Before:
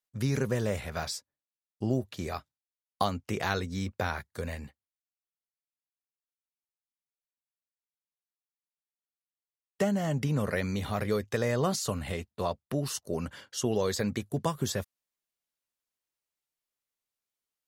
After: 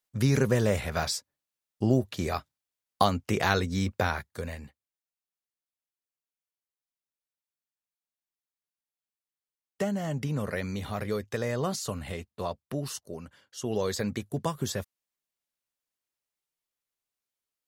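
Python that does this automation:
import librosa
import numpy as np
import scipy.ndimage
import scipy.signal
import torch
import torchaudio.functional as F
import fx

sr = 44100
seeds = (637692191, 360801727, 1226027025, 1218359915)

y = fx.gain(x, sr, db=fx.line((3.95, 5.0), (4.62, -2.0), (12.92, -2.0), (13.4, -13.0), (13.75, -0.5)))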